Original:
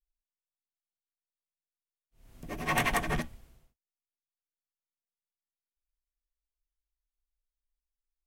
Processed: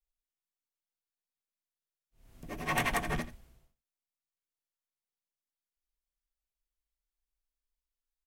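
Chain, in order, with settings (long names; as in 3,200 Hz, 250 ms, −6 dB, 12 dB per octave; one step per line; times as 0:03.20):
single-tap delay 84 ms −15 dB
level −2.5 dB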